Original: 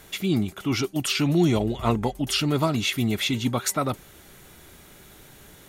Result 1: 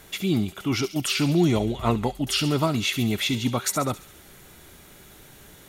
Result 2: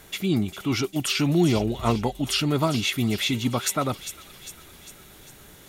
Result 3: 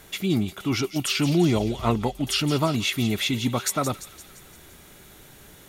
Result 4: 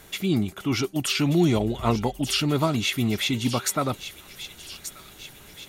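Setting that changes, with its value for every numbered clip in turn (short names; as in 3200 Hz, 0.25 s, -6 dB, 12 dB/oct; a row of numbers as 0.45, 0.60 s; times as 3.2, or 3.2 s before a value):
thin delay, time: 68, 401, 172, 1182 ms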